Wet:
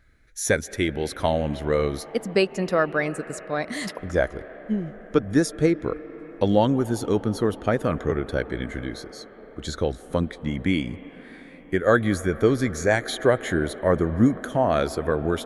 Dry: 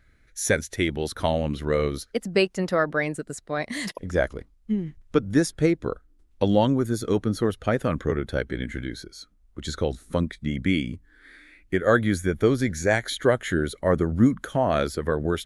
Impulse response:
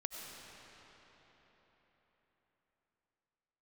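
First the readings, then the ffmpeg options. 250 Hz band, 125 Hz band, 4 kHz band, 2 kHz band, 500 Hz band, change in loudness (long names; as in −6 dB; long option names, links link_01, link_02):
+0.5 dB, 0.0 dB, −0.5 dB, +0.5 dB, +1.5 dB, +0.5 dB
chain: -filter_complex "[0:a]asplit=2[link_01][link_02];[link_02]highpass=370,equalizer=frequency=370:width_type=q:width=4:gain=-5,equalizer=frequency=550:width_type=q:width=4:gain=-6,equalizer=frequency=1000:width_type=q:width=4:gain=-5,equalizer=frequency=1500:width_type=q:width=4:gain=-6,equalizer=frequency=2200:width_type=q:width=4:gain=-6,lowpass=frequency=2500:width=0.5412,lowpass=frequency=2500:width=1.3066[link_03];[1:a]atrim=start_sample=2205,asetrate=25578,aresample=44100[link_04];[link_03][link_04]afir=irnorm=-1:irlink=0,volume=-9dB[link_05];[link_01][link_05]amix=inputs=2:normalize=0"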